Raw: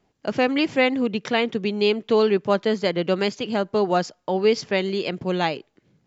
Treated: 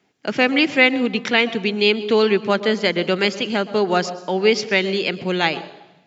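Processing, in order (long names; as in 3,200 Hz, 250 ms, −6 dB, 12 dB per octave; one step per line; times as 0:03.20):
high-pass filter 160 Hz
convolution reverb RT60 1.0 s, pre-delay 117 ms, DRR 17 dB
level +1.5 dB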